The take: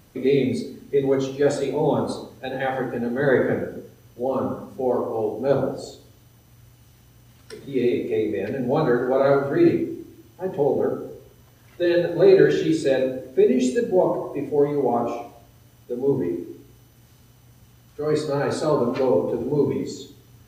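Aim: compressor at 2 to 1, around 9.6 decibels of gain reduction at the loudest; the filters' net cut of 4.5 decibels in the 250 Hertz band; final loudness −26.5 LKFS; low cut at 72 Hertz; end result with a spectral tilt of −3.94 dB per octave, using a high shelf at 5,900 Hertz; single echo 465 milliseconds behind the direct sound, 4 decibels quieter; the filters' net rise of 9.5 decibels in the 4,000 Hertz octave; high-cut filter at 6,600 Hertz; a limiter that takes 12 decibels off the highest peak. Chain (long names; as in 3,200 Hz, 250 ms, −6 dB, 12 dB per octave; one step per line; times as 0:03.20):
high-pass filter 72 Hz
low-pass filter 6,600 Hz
parametric band 250 Hz −6.5 dB
parametric band 4,000 Hz +9 dB
high-shelf EQ 5,900 Hz +6.5 dB
downward compressor 2 to 1, threshold −30 dBFS
brickwall limiter −26.5 dBFS
single-tap delay 465 ms −4 dB
level +8 dB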